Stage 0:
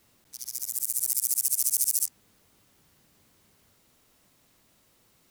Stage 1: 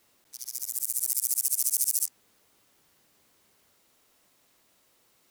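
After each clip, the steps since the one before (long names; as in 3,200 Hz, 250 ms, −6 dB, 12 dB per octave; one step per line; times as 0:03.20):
bass and treble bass −10 dB, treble 0 dB
level −1 dB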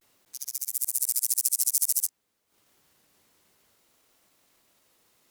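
pitch vibrato 0.53 Hz 64 cents
transient designer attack +4 dB, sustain −11 dB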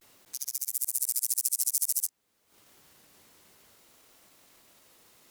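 downward compressor 1.5 to 1, threshold −47 dBFS, peak gain reduction 10 dB
level +6.5 dB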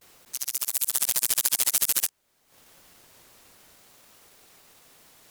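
sub-harmonics by changed cycles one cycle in 2, inverted
level +4.5 dB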